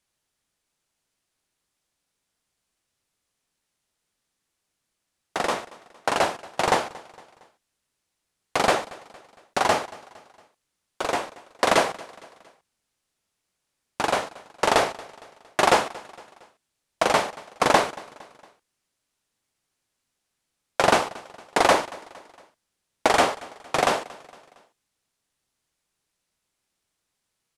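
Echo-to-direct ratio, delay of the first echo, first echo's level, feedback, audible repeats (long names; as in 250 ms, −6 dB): −20.0 dB, 230 ms, −21.0 dB, 48%, 3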